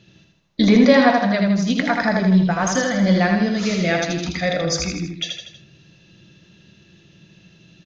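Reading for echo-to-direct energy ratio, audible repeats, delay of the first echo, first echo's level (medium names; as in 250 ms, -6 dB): -2.5 dB, 4, 80 ms, -4.0 dB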